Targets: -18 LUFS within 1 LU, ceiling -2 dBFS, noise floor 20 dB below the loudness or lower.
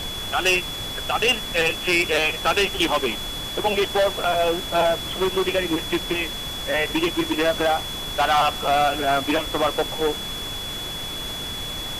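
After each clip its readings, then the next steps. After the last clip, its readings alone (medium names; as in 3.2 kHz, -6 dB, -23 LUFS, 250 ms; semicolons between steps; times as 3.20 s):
steady tone 3.4 kHz; tone level -30 dBFS; noise floor -31 dBFS; noise floor target -42 dBFS; loudness -22.0 LUFS; peak level -10.0 dBFS; loudness target -18.0 LUFS
-> band-stop 3.4 kHz, Q 30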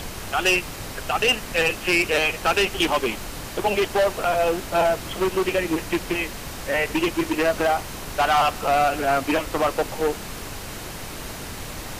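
steady tone not found; noise floor -35 dBFS; noise floor target -43 dBFS
-> noise print and reduce 8 dB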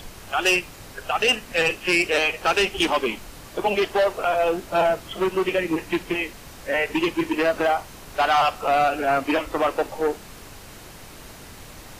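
noise floor -43 dBFS; loudness -22.5 LUFS; peak level -11.0 dBFS; loudness target -18.0 LUFS
-> trim +4.5 dB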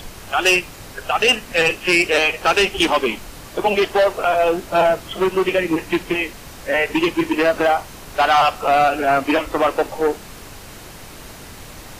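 loudness -18.0 LUFS; peak level -6.5 dBFS; noise floor -38 dBFS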